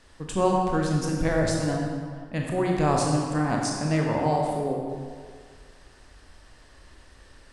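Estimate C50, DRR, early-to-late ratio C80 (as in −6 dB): 1.0 dB, −1.0 dB, 2.5 dB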